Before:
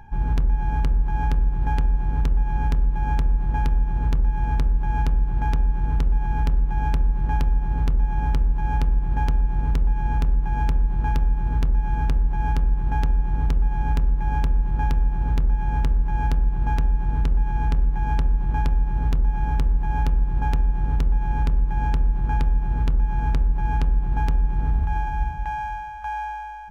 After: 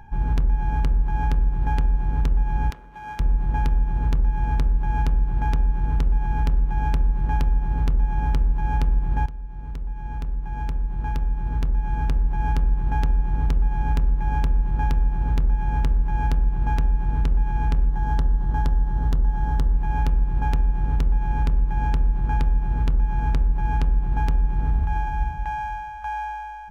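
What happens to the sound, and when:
2.70–3.20 s: high-pass 1.1 kHz 6 dB/octave
9.26–12.51 s: fade in, from -15.5 dB
17.89–19.73 s: peaking EQ 2.4 kHz -10.5 dB 0.31 oct

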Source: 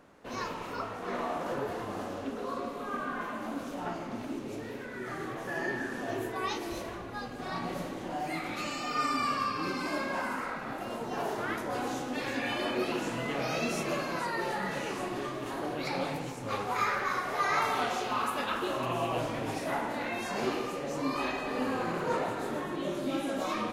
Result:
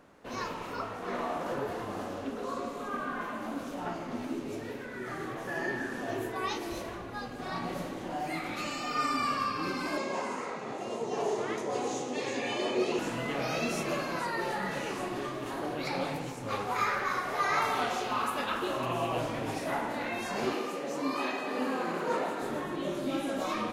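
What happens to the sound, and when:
2.43–2.88 s: peaking EQ 7.1 kHz +6.5 dB 0.64 oct
4.07–4.73 s: doubling 12 ms -5.5 dB
9.97–12.99 s: cabinet simulation 120–9500 Hz, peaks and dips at 280 Hz -4 dB, 420 Hz +9 dB, 1.5 kHz -10 dB, 6.6 kHz +8 dB
20.53–22.42 s: high-pass 180 Hz 24 dB/octave

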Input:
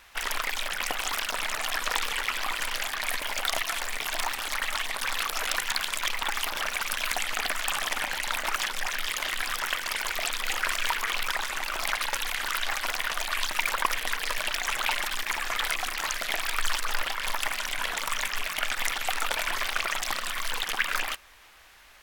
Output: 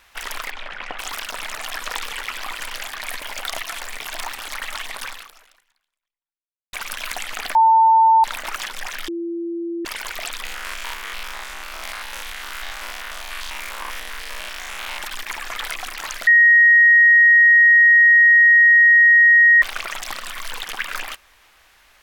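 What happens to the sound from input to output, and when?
0.50–0.99 s: low-pass 2.7 kHz
5.04–6.73 s: fade out exponential
7.55–8.24 s: bleep 895 Hz -9.5 dBFS
9.08–9.85 s: bleep 339 Hz -23.5 dBFS
10.45–15.02 s: spectrogram pixelated in time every 100 ms
16.27–19.62 s: bleep 1.88 kHz -8 dBFS

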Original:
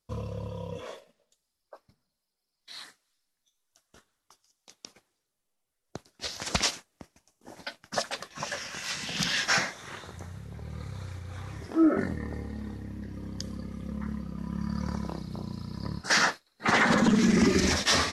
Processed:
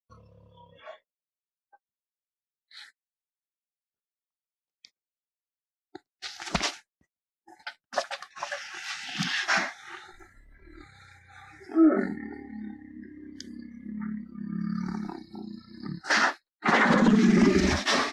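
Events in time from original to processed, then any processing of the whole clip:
0.60–2.77 s: treble shelf 4.8 kHz -9 dB
10.13–10.82 s: comb filter that takes the minimum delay 3 ms
whole clip: gate -48 dBFS, range -24 dB; spectral noise reduction 22 dB; low-pass 2.6 kHz 6 dB/octave; trim +2.5 dB

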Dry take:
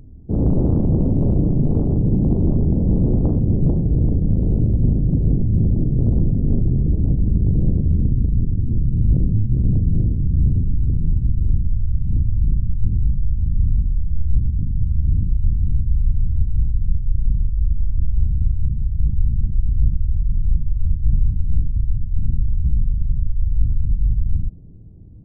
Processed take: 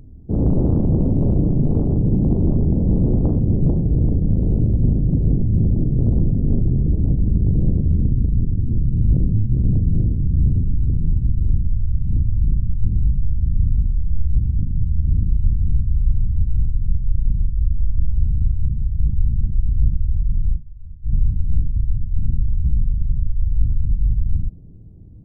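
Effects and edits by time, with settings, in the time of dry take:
12.80–18.47 s: multi-tap echo 115/134 ms -18/-13.5 dB
20.48–21.16 s: dip -17.5 dB, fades 0.14 s

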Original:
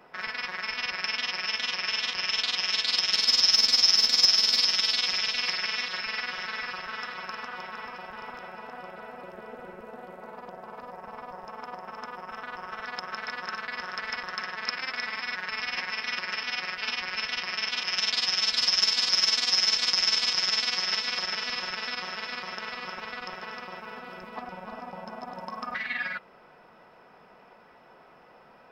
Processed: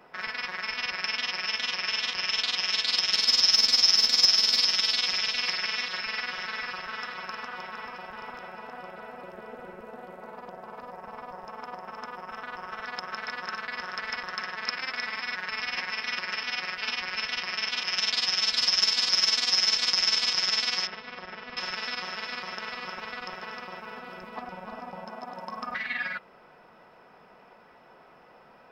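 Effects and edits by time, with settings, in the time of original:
20.87–21.57 s: tape spacing loss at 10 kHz 43 dB
25.05–25.49 s: bass shelf 110 Hz -11 dB

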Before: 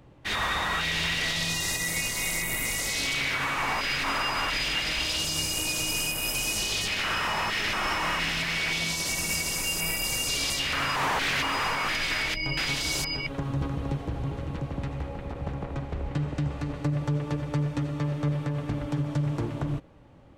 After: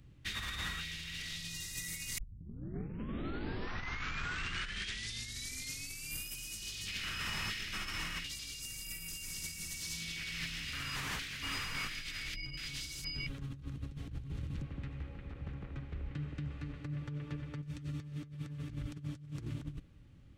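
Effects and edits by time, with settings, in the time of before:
2.18 s: tape start 4.10 s
8.24–10.65 s: reverse
14.62–17.63 s: tone controls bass -7 dB, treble -15 dB
whole clip: amplifier tone stack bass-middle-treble 6-0-2; compressor with a negative ratio -48 dBFS, ratio -0.5; peaking EQ 940 Hz -5 dB 0.37 oct; trim +8 dB

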